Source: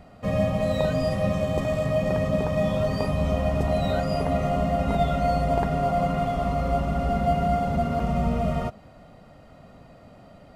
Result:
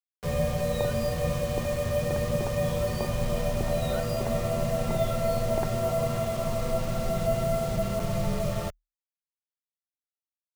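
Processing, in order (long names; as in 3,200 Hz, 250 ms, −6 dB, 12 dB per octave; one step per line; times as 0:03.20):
bit reduction 6 bits
frequency shifter −39 Hz
level −3.5 dB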